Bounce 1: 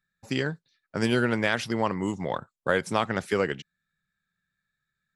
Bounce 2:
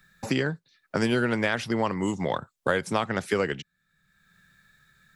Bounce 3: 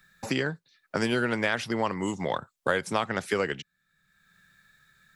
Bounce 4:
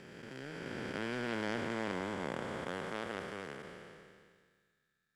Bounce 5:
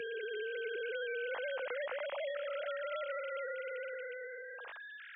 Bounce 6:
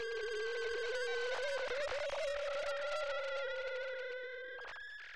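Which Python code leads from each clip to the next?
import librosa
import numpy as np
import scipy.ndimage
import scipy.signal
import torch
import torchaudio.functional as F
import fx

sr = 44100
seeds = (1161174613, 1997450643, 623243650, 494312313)

y1 = fx.band_squash(x, sr, depth_pct=70)
y2 = fx.low_shelf(y1, sr, hz=380.0, db=-4.5)
y3 = fx.spec_blur(y2, sr, span_ms=1280.0)
y3 = fx.power_curve(y3, sr, exponent=1.4)
y3 = y3 * librosa.db_to_amplitude(-1.0)
y4 = fx.sine_speech(y3, sr)
y4 = fx.band_squash(y4, sr, depth_pct=100)
y5 = fx.tracing_dist(y4, sr, depth_ms=0.15)
y5 = y5 + 10.0 ** (-20.0 / 20.0) * np.pad(y5, (int(226 * sr / 1000.0), 0))[:len(y5)]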